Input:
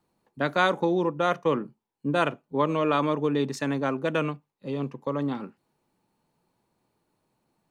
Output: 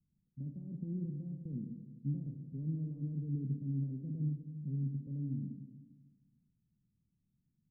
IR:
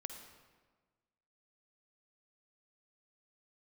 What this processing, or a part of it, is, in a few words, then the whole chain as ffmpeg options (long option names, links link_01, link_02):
club heard from the street: -filter_complex "[0:a]alimiter=limit=-20dB:level=0:latency=1:release=27,lowpass=frequency=180:width=0.5412,lowpass=frequency=180:width=1.3066[link_01];[1:a]atrim=start_sample=2205[link_02];[link_01][link_02]afir=irnorm=-1:irlink=0,volume=4.5dB"